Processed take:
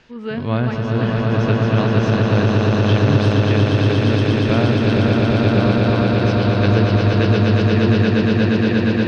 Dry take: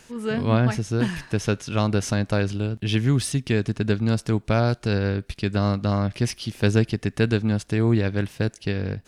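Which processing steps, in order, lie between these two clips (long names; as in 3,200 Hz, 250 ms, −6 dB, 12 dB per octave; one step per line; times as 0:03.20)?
low-pass filter 4,400 Hz 24 dB per octave
on a send: echo that builds up and dies away 118 ms, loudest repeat 8, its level −4 dB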